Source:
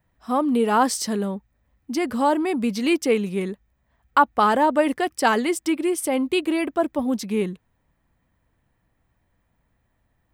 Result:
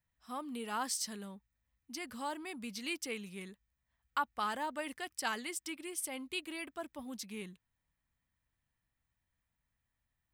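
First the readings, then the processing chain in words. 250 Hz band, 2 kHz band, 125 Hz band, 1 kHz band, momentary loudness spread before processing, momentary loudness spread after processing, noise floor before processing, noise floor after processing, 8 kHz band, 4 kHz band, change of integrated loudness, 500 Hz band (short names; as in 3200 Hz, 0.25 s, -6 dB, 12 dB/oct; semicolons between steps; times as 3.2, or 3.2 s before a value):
-22.0 dB, -13.5 dB, under -15 dB, -18.0 dB, 10 LU, 11 LU, -70 dBFS, under -85 dBFS, -9.0 dB, -10.5 dB, -17.5 dB, -23.0 dB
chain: passive tone stack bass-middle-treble 5-5-5; gain -3 dB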